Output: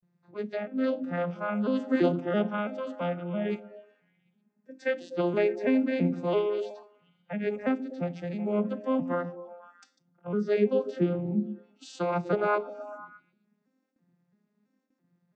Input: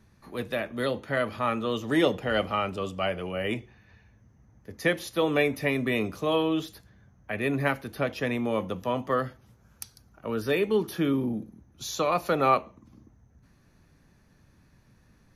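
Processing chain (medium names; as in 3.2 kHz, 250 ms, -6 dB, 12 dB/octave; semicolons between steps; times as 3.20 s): vocoder on a broken chord minor triad, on F3, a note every 333 ms; gate with hold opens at -57 dBFS; repeats whose band climbs or falls 124 ms, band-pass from 250 Hz, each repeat 0.7 oct, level -7 dB; spectral noise reduction 10 dB; 7.64–8.38 s: peaking EQ 1.2 kHz -2 dB -> -13.5 dB 1.5 oct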